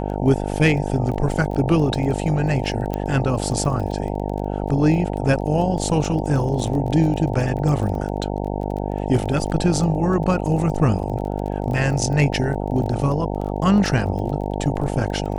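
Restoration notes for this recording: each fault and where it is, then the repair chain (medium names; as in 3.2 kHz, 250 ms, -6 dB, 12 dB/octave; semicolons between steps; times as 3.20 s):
buzz 50 Hz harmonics 18 -25 dBFS
crackle 21 per s -28 dBFS
2.94 s: pop -12 dBFS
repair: de-click; de-hum 50 Hz, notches 18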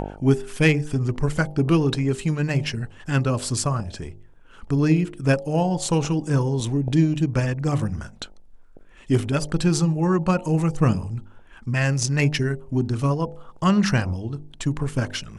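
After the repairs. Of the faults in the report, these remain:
2.94 s: pop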